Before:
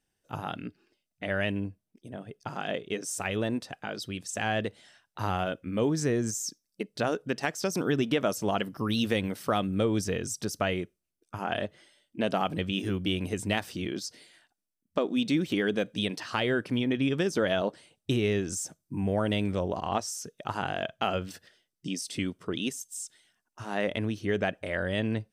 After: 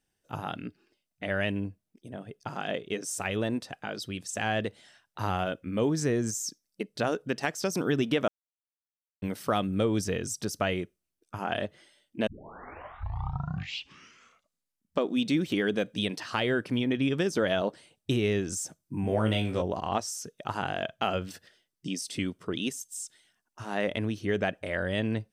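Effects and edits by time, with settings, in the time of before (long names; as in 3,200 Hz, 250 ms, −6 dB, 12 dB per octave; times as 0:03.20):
0:08.28–0:09.22: silence
0:12.27: tape start 2.77 s
0:19.02–0:19.62: flutter between parallel walls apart 3.1 metres, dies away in 0.25 s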